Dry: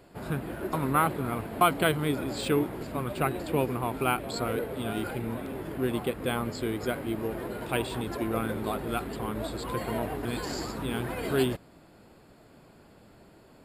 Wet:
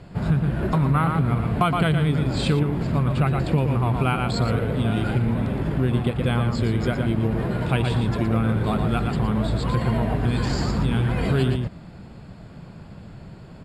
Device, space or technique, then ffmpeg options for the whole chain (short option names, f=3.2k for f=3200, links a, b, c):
jukebox: -filter_complex "[0:a]lowpass=6.3k,lowshelf=f=230:t=q:w=1.5:g=9,asplit=2[a][b];[b]adelay=116.6,volume=-6dB,highshelf=f=4k:g=-2.62[c];[a][c]amix=inputs=2:normalize=0,acompressor=threshold=-26dB:ratio=3,volume=7.5dB"